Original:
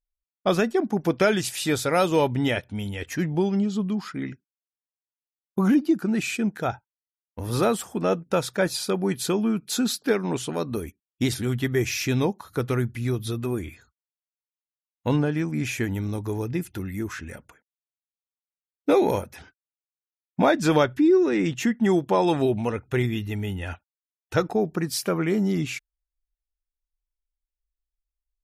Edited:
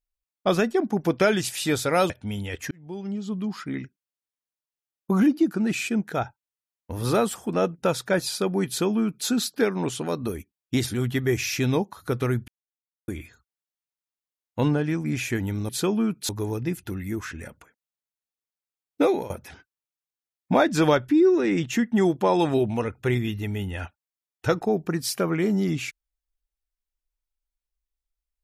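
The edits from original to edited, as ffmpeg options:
ffmpeg -i in.wav -filter_complex "[0:a]asplit=8[link_01][link_02][link_03][link_04][link_05][link_06][link_07][link_08];[link_01]atrim=end=2.102[link_09];[link_02]atrim=start=2.578:end=3.19,asetpts=PTS-STARTPTS,afade=type=out:start_time=0.608:duration=0.004:curve=hsin[link_10];[link_03]atrim=start=3.19:end=12.96,asetpts=PTS-STARTPTS,afade=type=in:duration=0.96,afade=type=out:start_time=9.766:duration=0.004:curve=hsin[link_11];[link_04]atrim=start=12.96:end=13.56,asetpts=PTS-STARTPTS,volume=0[link_12];[link_05]atrim=start=13.56:end=16.172,asetpts=PTS-STARTPTS,afade=type=in:duration=0.004:curve=hsin[link_13];[link_06]atrim=start=9.148:end=9.752[link_14];[link_07]atrim=start=16.168:end=19.18,asetpts=PTS-STARTPTS,afade=type=out:start_time=2.722:duration=0.29:silence=0.125893[link_15];[link_08]atrim=start=19.18,asetpts=PTS-STARTPTS,afade=type=in:duration=0.004:curve=hsin:silence=0.125893[link_16];[link_10][link_11][link_12][link_13]concat=n=4:v=0:a=1[link_17];[link_09][link_17]acrossfade=duration=0.004:curve1=hsin:curve2=hsin[link_18];[link_18][link_14]acrossfade=duration=0.004:curve1=hsin:curve2=hsin[link_19];[link_15][link_16]concat=n=2:v=0:a=1[link_20];[link_19][link_20]acrossfade=duration=0.004:curve1=hsin:curve2=hsin" out.wav

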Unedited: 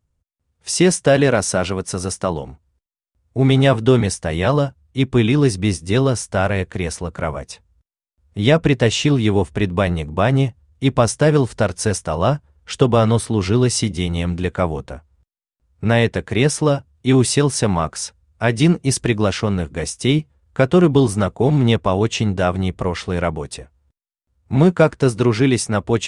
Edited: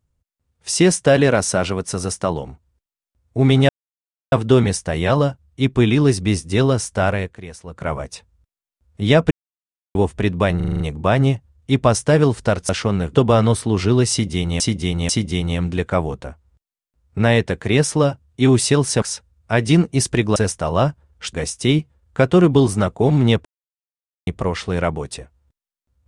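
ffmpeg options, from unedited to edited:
ffmpeg -i in.wav -filter_complex "[0:a]asplit=21[link_01][link_02][link_03][link_04][link_05][link_06][link_07][link_08][link_09][link_10][link_11][link_12][link_13][link_14][link_15][link_16][link_17][link_18][link_19][link_20][link_21];[link_01]atrim=end=3.69,asetpts=PTS-STARTPTS,afade=type=out:start_time=3.686:duration=0.004:curve=hsin,apad=pad_dur=0.63[link_22];[link_02]atrim=start=3.69:end=6.75,asetpts=PTS-STARTPTS,afade=type=in:duration=0.004:curve=hsin,afade=type=out:start_time=2.78:duration=0.28:silence=0.251189[link_23];[link_03]atrim=start=6.75:end=7.01,asetpts=PTS-STARTPTS,volume=-12dB[link_24];[link_04]atrim=start=7.01:end=8.68,asetpts=PTS-STARTPTS,afade=type=in:duration=0.28:silence=0.251189,afade=type=out:start_time=1.666:duration=0.004:curve=hsin[link_25];[link_05]atrim=start=8.68:end=9.32,asetpts=PTS-STARTPTS,volume=0[link_26];[link_06]atrim=start=9.32:end=9.972,asetpts=PTS-STARTPTS,afade=type=in:duration=0.004:curve=hsin[link_27];[link_07]atrim=start=9.928:end=9.972[link_28];[link_08]atrim=start=9.928:end=9.972[link_29];[link_09]atrim=start=9.928:end=9.972[link_30];[link_10]atrim=start=9.928:end=9.972[link_31];[link_11]atrim=start=9.928:end=9.972[link_32];[link_12]atrim=start=9.928:end=11.822[link_33];[link_13]atrim=start=19.268:end=19.732[link_34];[link_14]atrim=start=12.788:end=14.242[link_35];[link_15]atrim=start=13.748:end=14.242[link_36];[link_16]atrim=start=13.748:end=17.682[link_37];[link_17]atrim=start=17.928:end=19.272[link_38];[link_18]atrim=start=11.818:end=12.792[link_39];[link_19]atrim=start=19.728:end=21.85,asetpts=PTS-STARTPTS,afade=type=out:start_time=2.118:duration=0.004:curve=hsin[link_40];[link_20]atrim=start=21.85:end=22.67,asetpts=PTS-STARTPTS,volume=0[link_41];[link_21]atrim=start=22.67,asetpts=PTS-STARTPTS,afade=type=in:duration=0.004:curve=hsin[link_42];[link_22][link_23][link_24][link_25][link_26][link_27]concat=n=6:v=0:a=1[link_43];[link_43][link_28]acrossfade=duration=0.004:curve1=hsin:curve2=hsin[link_44];[link_44][link_29]acrossfade=duration=0.004:curve1=hsin:curve2=hsin[link_45];[link_45][link_30]acrossfade=duration=0.004:curve1=hsin:curve2=hsin[link_46];[link_46][link_31]acrossfade=duration=0.004:curve1=hsin:curve2=hsin[link_47];[link_47][link_32]acrossfade=duration=0.004:curve1=hsin:curve2=hsin[link_48];[link_48][link_33]acrossfade=duration=0.004:curve1=hsin:curve2=hsin[link_49];[link_49][link_34]acrossfade=duration=0.004:curve1=hsin:curve2=hsin[link_50];[link_50][link_35]acrossfade=duration=0.004:curve1=hsin:curve2=hsin[link_51];[link_51][link_36]acrossfade=duration=0.004:curve1=hsin:curve2=hsin[link_52];[link_52][link_37]acrossfade=duration=0.004:curve1=hsin:curve2=hsin[link_53];[link_53][link_38]acrossfade=duration=0.004:curve1=hsin:curve2=hsin[link_54];[link_54][link_39]acrossfade=duration=0.004:curve1=hsin:curve2=hsin[link_55];[link_40][link_41][link_42]concat=n=3:v=0:a=1[link_56];[link_55][link_56]acrossfade=duration=0.004:curve1=hsin:curve2=hsin" out.wav

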